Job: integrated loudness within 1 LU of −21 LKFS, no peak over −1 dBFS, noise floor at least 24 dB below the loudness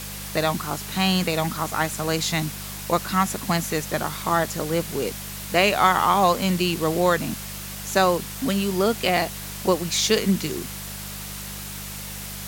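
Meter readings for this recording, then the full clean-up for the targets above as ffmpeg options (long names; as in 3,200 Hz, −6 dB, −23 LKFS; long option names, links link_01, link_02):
mains hum 50 Hz; hum harmonics up to 200 Hz; level of the hum −37 dBFS; background noise floor −35 dBFS; target noise floor −48 dBFS; integrated loudness −23.5 LKFS; sample peak −4.5 dBFS; target loudness −21.0 LKFS
→ -af "bandreject=frequency=50:width_type=h:width=4,bandreject=frequency=100:width_type=h:width=4,bandreject=frequency=150:width_type=h:width=4,bandreject=frequency=200:width_type=h:width=4"
-af "afftdn=noise_reduction=13:noise_floor=-35"
-af "volume=2.5dB"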